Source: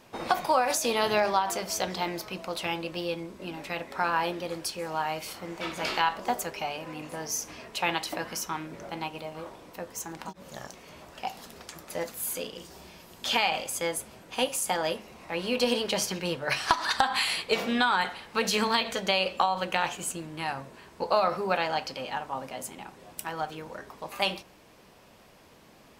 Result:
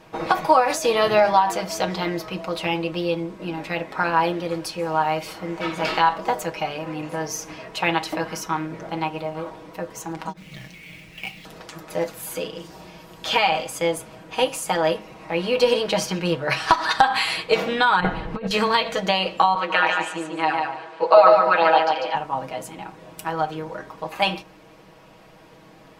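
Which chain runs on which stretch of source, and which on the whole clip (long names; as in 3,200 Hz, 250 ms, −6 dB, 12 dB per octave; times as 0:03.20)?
0:10.37–0:11.45: drawn EQ curve 180 Hz 0 dB, 1,300 Hz −25 dB, 2,200 Hz +9 dB, 11,000 Hz −20 dB + log-companded quantiser 4 bits
0:18.00–0:18.51: spectral tilt −4 dB per octave + compressor whose output falls as the input rises −30 dBFS, ratio −0.5 + one half of a high-frequency compander encoder only
0:19.55–0:22.15: band-pass filter 430–5,300 Hz + comb filter 6.2 ms, depth 87% + repeating echo 146 ms, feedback 23%, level −4 dB
whole clip: high-shelf EQ 4,500 Hz −10.5 dB; comb filter 6.3 ms; level +6 dB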